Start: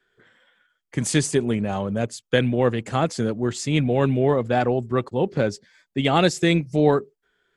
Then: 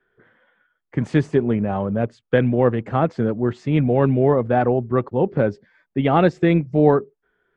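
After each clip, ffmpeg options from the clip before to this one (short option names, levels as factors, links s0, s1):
-af "lowpass=1600,volume=1.41"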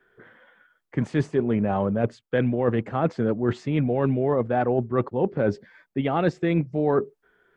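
-af "lowshelf=f=140:g=-4.5,areverse,acompressor=threshold=0.0562:ratio=6,areverse,volume=1.88"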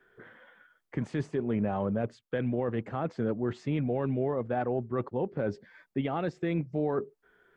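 -af "alimiter=limit=0.106:level=0:latency=1:release=370,volume=0.891"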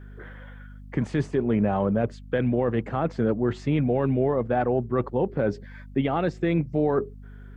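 -af "aeval=exprs='val(0)+0.00398*(sin(2*PI*50*n/s)+sin(2*PI*2*50*n/s)/2+sin(2*PI*3*50*n/s)/3+sin(2*PI*4*50*n/s)/4+sin(2*PI*5*50*n/s)/5)':c=same,volume=2.11"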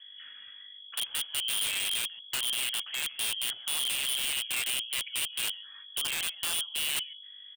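-filter_complex "[0:a]asplit=2[s0][s1];[s1]adelay=139.9,volume=0.112,highshelf=f=4000:g=-3.15[s2];[s0][s2]amix=inputs=2:normalize=0,lowpass=f=2900:t=q:w=0.5098,lowpass=f=2900:t=q:w=0.6013,lowpass=f=2900:t=q:w=0.9,lowpass=f=2900:t=q:w=2.563,afreqshift=-3400,aeval=exprs='(mod(7.94*val(0)+1,2)-1)/7.94':c=same,volume=0.447"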